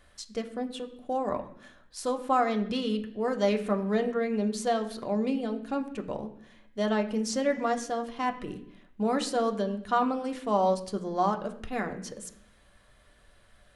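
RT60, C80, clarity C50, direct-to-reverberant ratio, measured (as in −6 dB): 0.70 s, 14.5 dB, 12.5 dB, 3.5 dB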